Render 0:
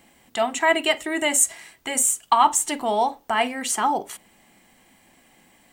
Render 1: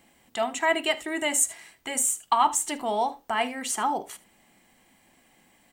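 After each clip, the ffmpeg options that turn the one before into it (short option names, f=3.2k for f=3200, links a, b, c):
-af "aecho=1:1:76:0.106,volume=-4.5dB"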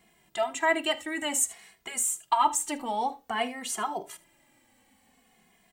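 -filter_complex "[0:a]asplit=2[a][b];[b]adelay=2.4,afreqshift=-0.54[c];[a][c]amix=inputs=2:normalize=1"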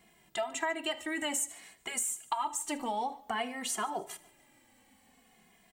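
-af "acompressor=threshold=-30dB:ratio=6,aecho=1:1:146|292|438:0.0794|0.0294|0.0109"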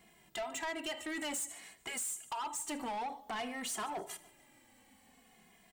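-af "asoftclip=type=tanh:threshold=-34.5dB"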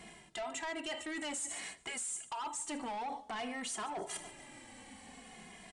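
-af "areverse,acompressor=threshold=-51dB:ratio=5,areverse,aresample=22050,aresample=44100,volume=11dB"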